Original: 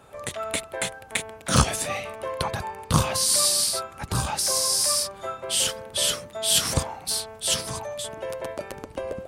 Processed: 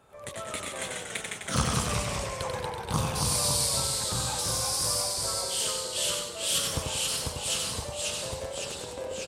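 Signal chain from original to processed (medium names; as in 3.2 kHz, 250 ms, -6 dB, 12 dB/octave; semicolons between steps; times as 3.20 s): feedback delay 90 ms, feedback 43%, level -4.5 dB; ever faster or slower copies 92 ms, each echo -1 st, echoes 3; trim -8.5 dB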